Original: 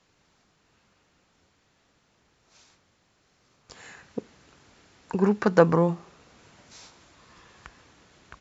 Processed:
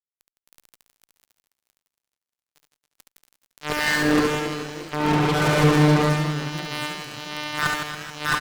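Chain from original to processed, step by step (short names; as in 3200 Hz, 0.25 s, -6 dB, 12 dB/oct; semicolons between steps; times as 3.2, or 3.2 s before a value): spectral swells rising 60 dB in 0.50 s; Chebyshev low-pass 3500 Hz, order 8; gate -50 dBFS, range -8 dB; reverse; compressor 6:1, threshold -38 dBFS, peak gain reduction 24.5 dB; reverse; robotiser 150 Hz; added harmonics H 2 -25 dB, 3 -26 dB, 6 -38 dB, 7 -33 dB, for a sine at -26 dBFS; crackle 19/s -59 dBFS; fuzz box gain 55 dB, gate -57 dBFS; on a send: reverse bouncing-ball echo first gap 70 ms, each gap 1.3×, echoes 5; on the sum: warbling echo 0.35 s, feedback 52%, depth 137 cents, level -17.5 dB; gain -1 dB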